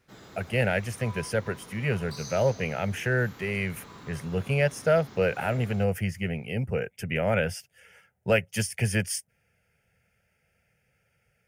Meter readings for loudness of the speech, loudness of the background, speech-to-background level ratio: -28.0 LUFS, -46.5 LUFS, 18.5 dB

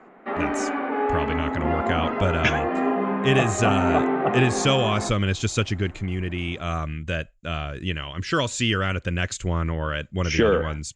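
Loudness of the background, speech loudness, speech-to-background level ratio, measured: -25.5 LUFS, -25.0 LUFS, 0.5 dB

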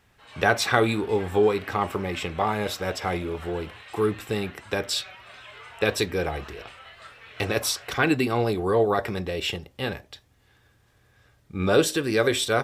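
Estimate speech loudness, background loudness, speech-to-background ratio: -25.5 LUFS, -44.0 LUFS, 18.5 dB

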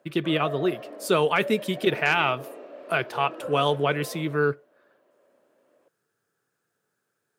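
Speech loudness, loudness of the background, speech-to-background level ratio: -25.0 LUFS, -39.5 LUFS, 14.5 dB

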